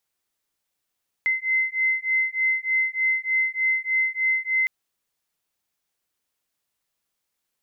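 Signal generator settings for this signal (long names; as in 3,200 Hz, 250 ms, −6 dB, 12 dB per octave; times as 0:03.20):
two tones that beat 2,060 Hz, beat 3.3 Hz, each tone −23.5 dBFS 3.41 s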